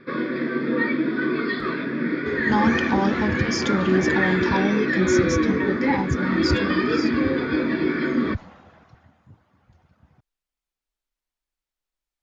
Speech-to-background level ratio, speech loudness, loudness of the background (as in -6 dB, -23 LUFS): -2.5 dB, -25.5 LUFS, -23.0 LUFS